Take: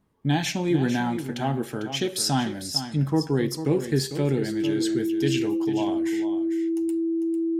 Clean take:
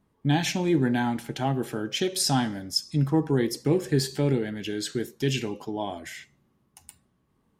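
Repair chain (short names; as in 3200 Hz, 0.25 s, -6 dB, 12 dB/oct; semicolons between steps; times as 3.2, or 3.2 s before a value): notch 330 Hz, Q 30; inverse comb 0.449 s -10.5 dB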